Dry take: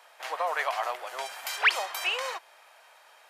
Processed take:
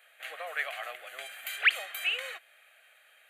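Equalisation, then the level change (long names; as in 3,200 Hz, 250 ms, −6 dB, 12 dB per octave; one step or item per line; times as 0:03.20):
parametric band 350 Hz −11 dB 0.97 octaves
phaser with its sweep stopped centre 2,300 Hz, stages 4
0.0 dB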